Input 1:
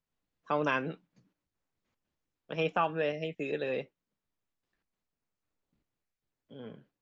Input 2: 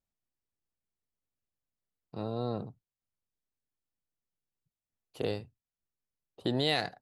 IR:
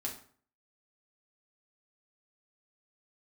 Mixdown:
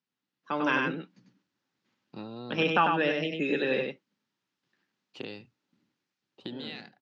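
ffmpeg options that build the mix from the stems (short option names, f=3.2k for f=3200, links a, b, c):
-filter_complex "[0:a]volume=2dB,asplit=2[a][b];[b]volume=-4.5dB[c];[1:a]equalizer=f=2.5k:t=o:w=0.45:g=9,acompressor=threshold=-34dB:ratio=5,volume=-4.5dB[d];[c]aecho=0:1:97:1[e];[a][d][e]amix=inputs=3:normalize=0,dynaudnorm=f=150:g=11:m=7dB,highpass=f=140:w=0.5412,highpass=f=140:w=1.3066,equalizer=f=150:t=q:w=4:g=-6,equalizer=f=460:t=q:w=4:g=-7,equalizer=f=660:t=q:w=4:g=-10,equalizer=f=1.1k:t=q:w=4:g=-4,equalizer=f=2.3k:t=q:w=4:g=-3,lowpass=f=5.9k:w=0.5412,lowpass=f=5.9k:w=1.3066"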